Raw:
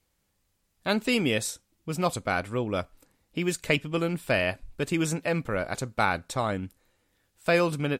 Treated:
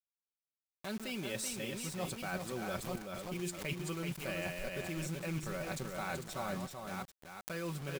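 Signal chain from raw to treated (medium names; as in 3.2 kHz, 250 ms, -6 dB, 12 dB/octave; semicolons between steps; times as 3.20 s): chunks repeated in reverse 501 ms, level -11 dB; Doppler pass-by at 3.26 s, 7 m/s, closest 5.4 m; bass shelf 110 Hz +4 dB; comb 5.3 ms, depth 62%; reverse; compression 16:1, threshold -41 dBFS, peak gain reduction 23.5 dB; reverse; bit crusher 9-bit; on a send: delay 382 ms -5.5 dB; on the sum: swell ahead of each attack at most 88 dB/s; trim +4.5 dB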